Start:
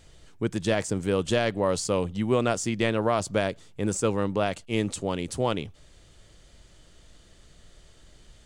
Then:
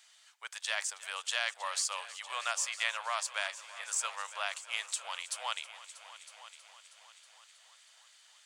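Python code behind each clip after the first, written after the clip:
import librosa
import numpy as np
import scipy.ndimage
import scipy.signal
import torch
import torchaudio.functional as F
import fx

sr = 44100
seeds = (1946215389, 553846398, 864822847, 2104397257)

y = scipy.signal.sosfilt(scipy.signal.bessel(8, 1400.0, 'highpass', norm='mag', fs=sr, output='sos'), x)
y = fx.echo_heads(y, sr, ms=319, heads='all three', feedback_pct=48, wet_db=-19)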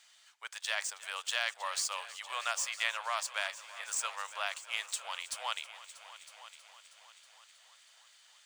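y = scipy.ndimage.median_filter(x, 3, mode='constant')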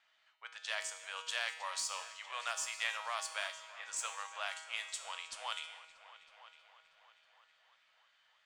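y = fx.env_lowpass(x, sr, base_hz=2200.0, full_db=-31.0)
y = fx.comb_fb(y, sr, f0_hz=160.0, decay_s=0.98, harmonics='all', damping=0.0, mix_pct=80)
y = y * librosa.db_to_amplitude(8.0)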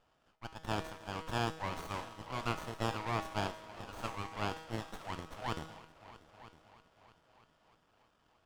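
y = fx.riaa(x, sr, side='playback')
y = fx.running_max(y, sr, window=17)
y = y * librosa.db_to_amplitude(5.5)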